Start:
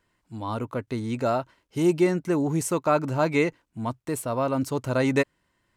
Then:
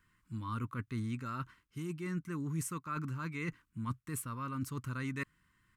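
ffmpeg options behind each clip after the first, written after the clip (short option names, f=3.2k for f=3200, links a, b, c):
-af "areverse,acompressor=threshold=-33dB:ratio=5,areverse,firequalizer=gain_entry='entry(170,0);entry(700,-29);entry(1100,1);entry(2400,-3);entry(4200,-7);entry(11000,-1)':delay=0.05:min_phase=1,volume=1.5dB"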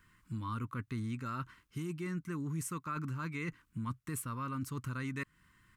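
-af "acompressor=threshold=-44dB:ratio=2.5,volume=6dB"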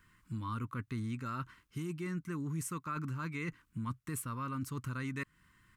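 -af anull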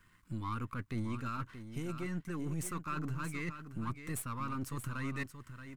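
-af "aeval=exprs='if(lt(val(0),0),0.447*val(0),val(0))':c=same,aecho=1:1:628:0.316,volume=2.5dB"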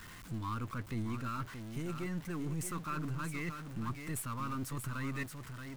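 -af "aeval=exprs='val(0)+0.5*0.00631*sgn(val(0))':c=same,volume=-1.5dB"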